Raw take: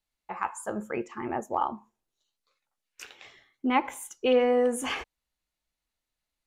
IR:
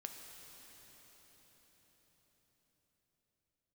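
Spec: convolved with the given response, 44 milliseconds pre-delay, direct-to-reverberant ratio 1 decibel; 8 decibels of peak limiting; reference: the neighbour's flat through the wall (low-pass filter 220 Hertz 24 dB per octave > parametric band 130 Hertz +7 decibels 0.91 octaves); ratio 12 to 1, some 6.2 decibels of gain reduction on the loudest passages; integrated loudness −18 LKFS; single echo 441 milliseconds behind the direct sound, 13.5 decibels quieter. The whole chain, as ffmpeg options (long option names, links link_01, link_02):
-filter_complex "[0:a]acompressor=threshold=-24dB:ratio=12,alimiter=limit=-22.5dB:level=0:latency=1,aecho=1:1:441:0.211,asplit=2[link_01][link_02];[1:a]atrim=start_sample=2205,adelay=44[link_03];[link_02][link_03]afir=irnorm=-1:irlink=0,volume=2.5dB[link_04];[link_01][link_04]amix=inputs=2:normalize=0,lowpass=frequency=220:width=0.5412,lowpass=frequency=220:width=1.3066,equalizer=frequency=130:width_type=o:width=0.91:gain=7,volume=24.5dB"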